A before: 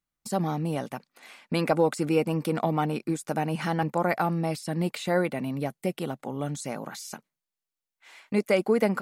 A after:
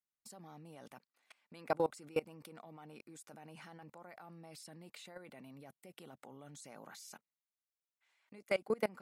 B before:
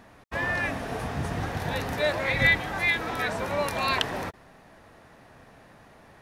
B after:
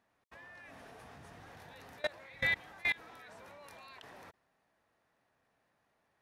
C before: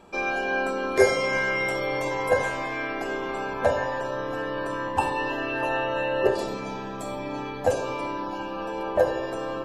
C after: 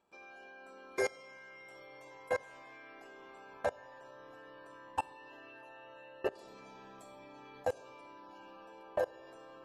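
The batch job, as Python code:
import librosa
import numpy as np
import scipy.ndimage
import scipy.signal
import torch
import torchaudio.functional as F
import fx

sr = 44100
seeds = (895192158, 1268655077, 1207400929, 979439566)

y = fx.highpass(x, sr, hz=41.0, slope=6)
y = fx.low_shelf(y, sr, hz=390.0, db=-7.0)
y = fx.level_steps(y, sr, step_db=24)
y = F.gain(torch.from_numpy(y), -5.5).numpy()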